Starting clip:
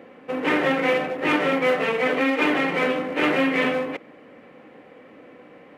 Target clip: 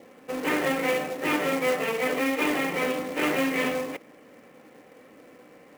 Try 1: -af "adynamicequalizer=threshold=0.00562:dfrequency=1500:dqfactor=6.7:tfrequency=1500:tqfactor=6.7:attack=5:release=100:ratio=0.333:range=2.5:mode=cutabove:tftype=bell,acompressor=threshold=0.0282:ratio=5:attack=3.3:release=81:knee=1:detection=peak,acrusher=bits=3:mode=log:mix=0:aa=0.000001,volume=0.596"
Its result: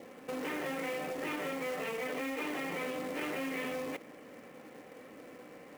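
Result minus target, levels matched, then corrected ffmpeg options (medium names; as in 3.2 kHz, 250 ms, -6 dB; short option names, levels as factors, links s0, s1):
compression: peak gain reduction +14.5 dB
-af "adynamicequalizer=threshold=0.00562:dfrequency=1500:dqfactor=6.7:tfrequency=1500:tqfactor=6.7:attack=5:release=100:ratio=0.333:range=2.5:mode=cutabove:tftype=bell,acrusher=bits=3:mode=log:mix=0:aa=0.000001,volume=0.596"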